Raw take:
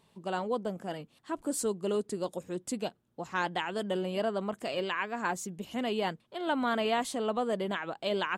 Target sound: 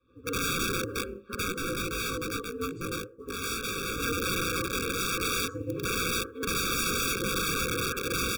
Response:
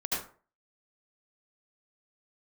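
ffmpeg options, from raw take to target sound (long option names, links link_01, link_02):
-filter_complex "[0:a]lowpass=2400,equalizer=frequency=670:width=0.87:gain=8.5[link_01];[1:a]atrim=start_sample=2205[link_02];[link_01][link_02]afir=irnorm=-1:irlink=0,acrusher=bits=9:mode=log:mix=0:aa=0.000001,asplit=2[link_03][link_04];[link_04]adelay=14,volume=-3dB[link_05];[link_03][link_05]amix=inputs=2:normalize=0,aeval=exprs='val(0)*sin(2*PI*93*n/s)':channel_layout=same,adynamicequalizer=threshold=0.0251:dfrequency=240:dqfactor=0.78:tfrequency=240:tqfactor=0.78:attack=5:release=100:ratio=0.375:range=2:mode=cutabove:tftype=bell,aeval=exprs='(mod(10.6*val(0)+1,2)-1)/10.6':channel_layout=same,asplit=3[link_06][link_07][link_08];[link_06]afade=type=out:start_time=1.52:duration=0.02[link_09];[link_07]flanger=delay=18:depth=2.1:speed=2.5,afade=type=in:start_time=1.52:duration=0.02,afade=type=out:start_time=4.01:duration=0.02[link_10];[link_08]afade=type=in:start_time=4.01:duration=0.02[link_11];[link_09][link_10][link_11]amix=inputs=3:normalize=0,afftfilt=real='re*eq(mod(floor(b*sr/1024/550),2),0)':imag='im*eq(mod(floor(b*sr/1024/550),2),0)':win_size=1024:overlap=0.75"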